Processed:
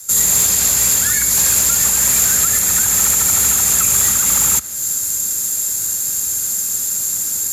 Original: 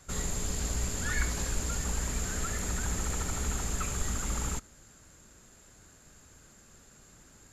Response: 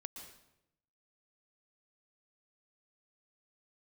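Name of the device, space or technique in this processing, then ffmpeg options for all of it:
FM broadcast chain: -filter_complex "[0:a]highpass=f=67:w=0.5412,highpass=f=67:w=1.3066,bandreject=f=3k:w=20,dynaudnorm=f=160:g=3:m=16dB,acrossover=split=100|220|550|3400[a][b][c][d][e];[a]acompressor=threshold=-36dB:ratio=4[f];[b]acompressor=threshold=-33dB:ratio=4[g];[c]acompressor=threshold=-41dB:ratio=4[h];[d]acompressor=threshold=-27dB:ratio=4[i];[e]acompressor=threshold=-37dB:ratio=4[j];[f][g][h][i][j]amix=inputs=5:normalize=0,aemphasis=mode=production:type=75fm,alimiter=limit=-14.5dB:level=0:latency=1:release=423,asoftclip=type=hard:threshold=-18.5dB,lowpass=f=15k:w=0.5412,lowpass=f=15k:w=1.3066,aemphasis=mode=production:type=75fm,volume=2dB"

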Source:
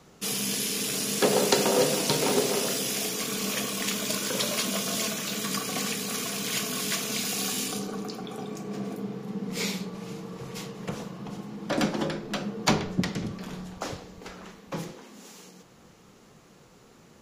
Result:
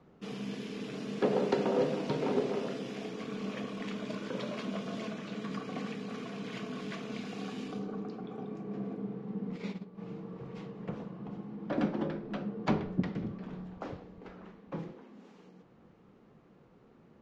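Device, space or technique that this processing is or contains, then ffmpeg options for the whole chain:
phone in a pocket: -filter_complex "[0:a]lowpass=3.3k,equalizer=f=260:t=o:w=1.8:g=4,highshelf=f=2.3k:g=-9.5,asplit=3[a][b][c];[a]afade=t=out:st=9.56:d=0.02[d];[b]agate=range=-10dB:threshold=-29dB:ratio=16:detection=peak,afade=t=in:st=9.56:d=0.02,afade=t=out:st=9.97:d=0.02[e];[c]afade=t=in:st=9.97:d=0.02[f];[d][e][f]amix=inputs=3:normalize=0,volume=-7dB"

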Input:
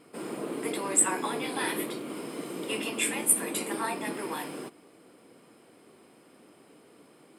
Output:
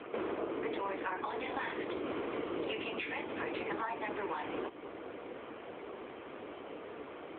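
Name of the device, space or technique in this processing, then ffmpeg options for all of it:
voicemail: -af "highpass=390,lowpass=2.9k,acompressor=threshold=-48dB:ratio=10,volume=14.5dB" -ar 8000 -c:a libopencore_amrnb -b:a 7950

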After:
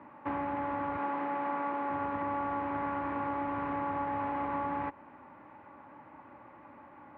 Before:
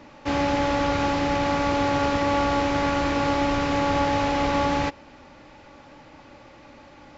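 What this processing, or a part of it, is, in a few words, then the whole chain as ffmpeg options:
bass amplifier: -filter_complex "[0:a]asettb=1/sr,asplit=3[a][b][c];[a]atrim=end=0.974[d];[b]atrim=start=0.97:end=1.9,asetpts=PTS-STARTPTS,afade=t=in:d=0.004:c=qsin,afade=t=out:st=0.926:d=0.004:c=qsin,highpass=250[e];[c]atrim=start=1.896[f];[d][e]acrossfade=d=0.004:c1=hsin:c2=qsin[g];[g][f]acrossfade=d=0.004:c1=qsin:c2=hsin,acompressor=threshold=-26dB:ratio=5,highpass=f=79:w=0.5412,highpass=f=79:w=1.3066,equalizer=f=83:t=q:w=4:g=-6,equalizer=f=140:t=q:w=4:g=-6,equalizer=f=500:t=q:w=4:g=-5,equalizer=f=1k:t=q:w=4:g=9,lowpass=f=2k:w=0.5412,lowpass=f=2k:w=1.3066,volume=-5.5dB"

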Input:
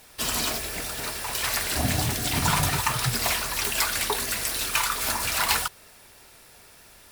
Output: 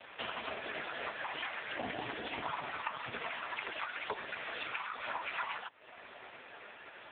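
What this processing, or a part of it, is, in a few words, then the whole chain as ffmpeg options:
voicemail: -af "highpass=350,lowpass=3.2k,acompressor=threshold=-42dB:ratio=8,volume=10.5dB" -ar 8000 -c:a libopencore_amrnb -b:a 4750

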